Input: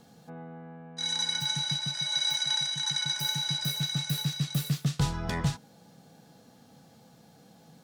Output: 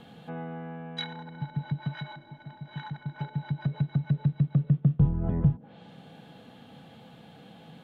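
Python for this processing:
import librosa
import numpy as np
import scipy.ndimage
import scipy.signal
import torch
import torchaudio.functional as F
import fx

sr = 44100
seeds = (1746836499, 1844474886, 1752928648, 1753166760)

y = fx.high_shelf_res(x, sr, hz=4200.0, db=-10.0, q=3.0)
y = fx.env_lowpass_down(y, sr, base_hz=350.0, full_db=-27.0)
y = F.gain(torch.from_numpy(y), 6.0).numpy()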